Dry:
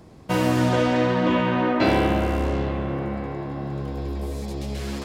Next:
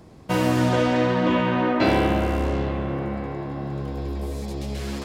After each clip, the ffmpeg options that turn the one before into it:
-af anull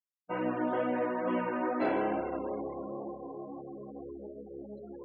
-filter_complex "[0:a]flanger=delay=16.5:depth=3.1:speed=2.2,afftfilt=real='re*gte(hypot(re,im),0.0355)':imag='im*gte(hypot(re,im),0.0355)':win_size=1024:overlap=0.75,acrossover=split=220 2300:gain=0.0708 1 0.126[a][b][c];[a][b][c]amix=inputs=3:normalize=0,volume=-5.5dB"

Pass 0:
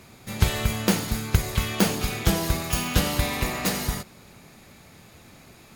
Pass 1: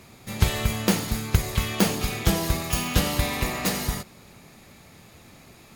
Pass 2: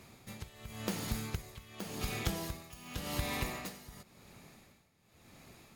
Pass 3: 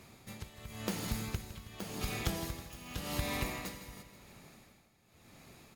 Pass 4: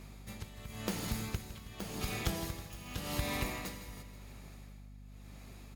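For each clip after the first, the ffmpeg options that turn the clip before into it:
-af "bandreject=f=1.5k:w=24"
-af "acompressor=threshold=-23dB:ratio=6,tremolo=f=0.91:d=0.86,volume=-6.5dB"
-af "aecho=1:1:160|320|480|640|800|960:0.224|0.132|0.0779|0.046|0.0271|0.016"
-af "aeval=exprs='val(0)+0.00316*(sin(2*PI*50*n/s)+sin(2*PI*2*50*n/s)/2+sin(2*PI*3*50*n/s)/3+sin(2*PI*4*50*n/s)/4+sin(2*PI*5*50*n/s)/5)':c=same"

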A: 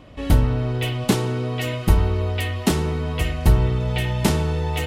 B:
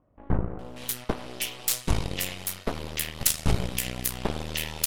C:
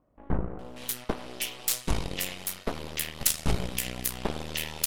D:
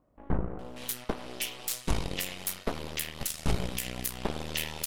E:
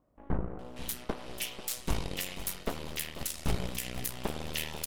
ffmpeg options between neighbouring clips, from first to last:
-filter_complex "[0:a]acrossover=split=1200[a][b];[b]adelay=590[c];[a][c]amix=inputs=2:normalize=0,aeval=exprs='0.596*(cos(1*acos(clip(val(0)/0.596,-1,1)))-cos(1*PI/2))+0.15*(cos(3*acos(clip(val(0)/0.596,-1,1)))-cos(3*PI/2))+0.188*(cos(4*acos(clip(val(0)/0.596,-1,1)))-cos(4*PI/2))':c=same,crystalizer=i=8:c=0,volume=-9.5dB"
-af "equalizer=f=96:t=o:w=0.79:g=-6.5,volume=-1.5dB"
-af "alimiter=limit=-14.5dB:level=0:latency=1:release=214"
-af "aecho=1:1:491|982|1473|1964:0.211|0.0951|0.0428|0.0193,volume=-2.5dB"

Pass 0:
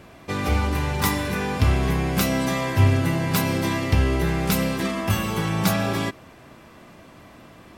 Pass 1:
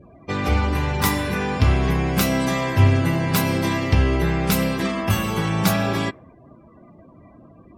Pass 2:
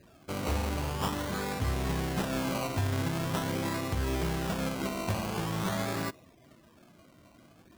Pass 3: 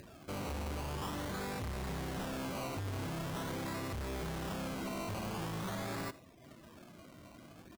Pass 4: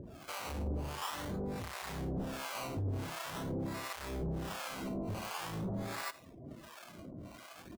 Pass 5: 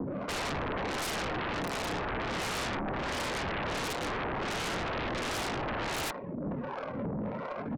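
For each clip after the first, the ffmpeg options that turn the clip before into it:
-af "afftdn=nr=32:nf=-43,volume=2dB"
-af "acrusher=samples=20:mix=1:aa=0.000001:lfo=1:lforange=12:lforate=0.45,lowshelf=f=350:g=-3,alimiter=limit=-12.5dB:level=0:latency=1:release=132,volume=-8.5dB"
-af "acompressor=mode=upward:threshold=-46dB:ratio=2.5,asoftclip=type=hard:threshold=-36dB,aecho=1:1:81:0.1,volume=-1.5dB"
-filter_complex "[0:a]alimiter=level_in=17.5dB:limit=-24dB:level=0:latency=1:release=227,volume=-17.5dB,acrossover=split=650[a][b];[a]aeval=exprs='val(0)*(1-1/2+1/2*cos(2*PI*1.4*n/s))':c=same[c];[b]aeval=exprs='val(0)*(1-1/2-1/2*cos(2*PI*1.4*n/s))':c=same[d];[c][d]amix=inputs=2:normalize=0,volume=9.5dB"
-af "highpass=f=260:t=q:w=0.5412,highpass=f=260:t=q:w=1.307,lowpass=f=2.7k:t=q:w=0.5176,lowpass=f=2.7k:t=q:w=0.7071,lowpass=f=2.7k:t=q:w=1.932,afreqshift=-89,adynamicsmooth=sensitivity=7:basefreq=810,aeval=exprs='0.0299*sin(PI/2*7.94*val(0)/0.0299)':c=same"

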